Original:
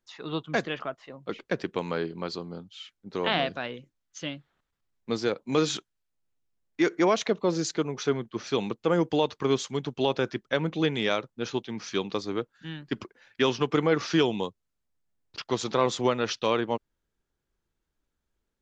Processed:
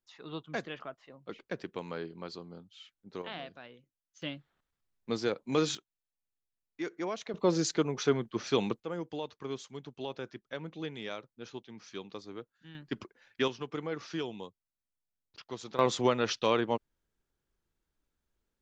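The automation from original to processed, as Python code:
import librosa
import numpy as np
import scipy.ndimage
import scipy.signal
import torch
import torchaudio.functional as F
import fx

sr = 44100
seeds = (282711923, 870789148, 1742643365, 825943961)

y = fx.gain(x, sr, db=fx.steps((0.0, -9.0), (3.22, -16.0), (4.22, -4.0), (5.75, -13.0), (7.34, -1.0), (8.8, -13.5), (12.75, -5.5), (13.48, -13.0), (15.79, -2.0)))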